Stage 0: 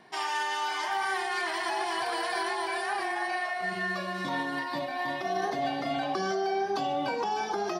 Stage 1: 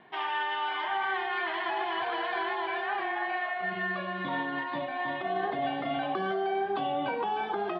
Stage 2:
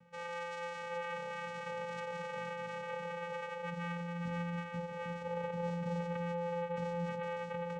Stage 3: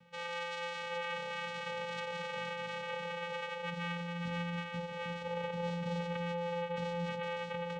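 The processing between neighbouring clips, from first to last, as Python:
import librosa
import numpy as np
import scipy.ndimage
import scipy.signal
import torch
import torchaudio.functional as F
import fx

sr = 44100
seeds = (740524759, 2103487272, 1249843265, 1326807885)

y1 = scipy.signal.sosfilt(scipy.signal.ellip(4, 1.0, 60, 3400.0, 'lowpass', fs=sr, output='sos'), x)
y2 = fx.vocoder(y1, sr, bands=4, carrier='square', carrier_hz=172.0)
y2 = F.gain(torch.from_numpy(y2), -7.5).numpy()
y3 = fx.peak_eq(y2, sr, hz=3500.0, db=10.5, octaves=1.2)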